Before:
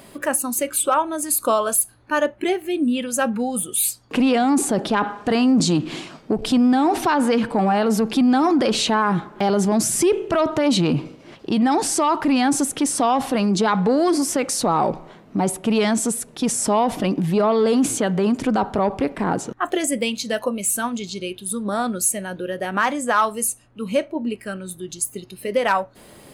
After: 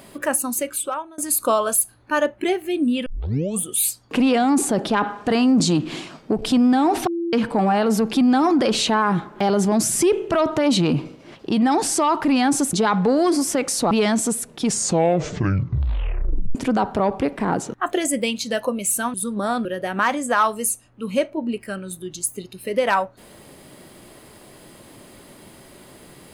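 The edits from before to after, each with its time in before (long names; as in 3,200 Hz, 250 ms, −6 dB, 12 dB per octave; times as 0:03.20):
0:00.48–0:01.18: fade out, to −24 dB
0:03.06: tape start 0.55 s
0:07.07–0:07.33: beep over 339 Hz −21.5 dBFS
0:12.73–0:13.54: remove
0:14.72–0:15.70: remove
0:16.36: tape stop 1.98 s
0:20.93–0:21.43: remove
0:21.94–0:22.43: remove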